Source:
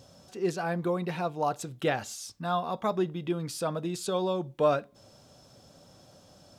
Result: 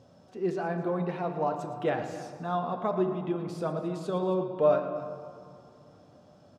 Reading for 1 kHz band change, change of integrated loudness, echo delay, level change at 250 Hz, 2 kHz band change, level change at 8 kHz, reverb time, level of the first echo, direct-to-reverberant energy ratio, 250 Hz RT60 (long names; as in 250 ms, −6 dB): −0.5 dB, 0.0 dB, 113 ms, +1.0 dB, −3.5 dB, below −10 dB, 2.5 s, −12.5 dB, 4.5 dB, 3.1 s